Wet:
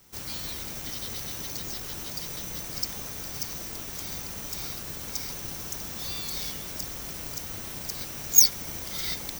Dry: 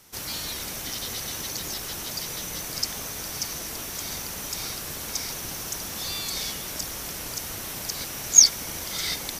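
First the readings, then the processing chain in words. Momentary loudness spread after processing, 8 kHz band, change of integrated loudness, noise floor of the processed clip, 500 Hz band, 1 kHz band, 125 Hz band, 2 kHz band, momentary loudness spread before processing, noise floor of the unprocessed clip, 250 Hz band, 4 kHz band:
9 LU, -5.5 dB, -2.5 dB, -38 dBFS, -3.5 dB, -5.0 dB, -0.5 dB, -5.5 dB, 9 LU, -35 dBFS, -2.0 dB, -5.5 dB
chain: bass shelf 310 Hz +6 dB; careless resampling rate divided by 2×, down filtered, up zero stuff; trim -5.5 dB

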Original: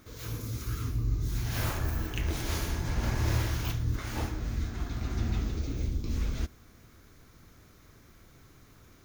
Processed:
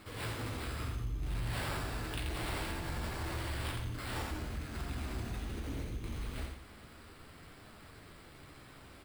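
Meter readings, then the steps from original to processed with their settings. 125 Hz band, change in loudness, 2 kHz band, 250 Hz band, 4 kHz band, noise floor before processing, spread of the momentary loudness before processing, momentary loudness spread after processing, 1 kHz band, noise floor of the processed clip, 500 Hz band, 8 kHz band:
-8.5 dB, -6.5 dB, -1.5 dB, -5.5 dB, -2.5 dB, -57 dBFS, 6 LU, 16 LU, -1.0 dB, -55 dBFS, -2.5 dB, -6.0 dB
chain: compression 4:1, threshold -35 dBFS, peak gain reduction 10.5 dB; bass shelf 360 Hz -6 dB; sample-and-hold 7×; feedback delay 85 ms, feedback 40%, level -5.5 dB; flange 0.26 Hz, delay 9.6 ms, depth 9.3 ms, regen -40%; saturation -36 dBFS, distortion -21 dB; trim +8 dB

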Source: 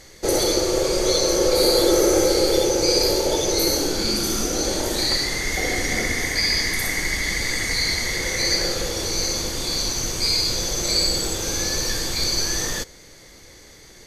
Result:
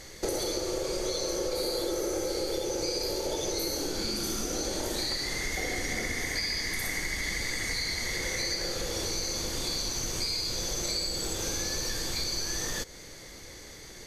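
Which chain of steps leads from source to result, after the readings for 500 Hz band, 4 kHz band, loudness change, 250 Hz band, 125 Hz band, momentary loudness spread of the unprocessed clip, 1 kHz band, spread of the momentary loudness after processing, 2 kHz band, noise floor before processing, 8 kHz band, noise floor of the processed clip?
-11.5 dB, -10.0 dB, -10.0 dB, -11.0 dB, -9.0 dB, 6 LU, -10.0 dB, 2 LU, -8.5 dB, -46 dBFS, -9.5 dB, -46 dBFS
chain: compression, threshold -29 dBFS, peak gain reduction 15 dB

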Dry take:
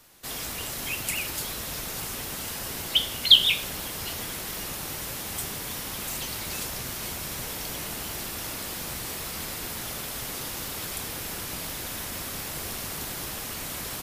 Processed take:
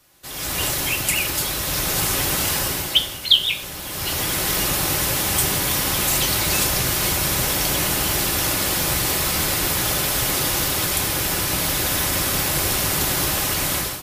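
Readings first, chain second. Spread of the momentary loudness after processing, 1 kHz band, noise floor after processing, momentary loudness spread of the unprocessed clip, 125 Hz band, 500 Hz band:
4 LU, +12.0 dB, -32 dBFS, 8 LU, +13.5 dB, +12.0 dB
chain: comb of notches 230 Hz; level rider gain up to 15.5 dB; trim -1 dB

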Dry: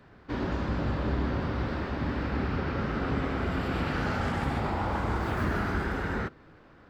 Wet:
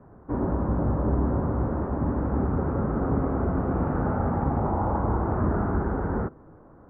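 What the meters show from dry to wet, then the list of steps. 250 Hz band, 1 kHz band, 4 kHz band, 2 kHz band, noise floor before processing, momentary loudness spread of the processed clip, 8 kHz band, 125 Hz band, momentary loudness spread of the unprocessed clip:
+5.0 dB, +3.0 dB, under -30 dB, -8.0 dB, -55 dBFS, 3 LU, no reading, +5.0 dB, 3 LU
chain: low-pass 1.1 kHz 24 dB/octave; trim +5 dB

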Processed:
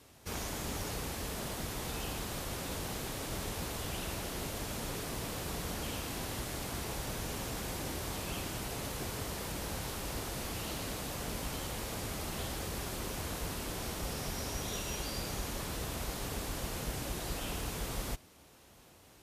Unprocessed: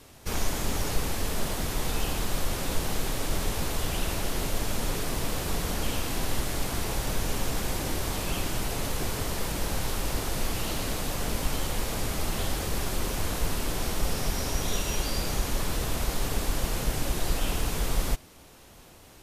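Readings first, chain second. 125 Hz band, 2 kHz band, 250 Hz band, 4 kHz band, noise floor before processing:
-8.0 dB, -7.0 dB, -7.0 dB, -7.0 dB, -51 dBFS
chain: high-pass 51 Hz; trim -7 dB

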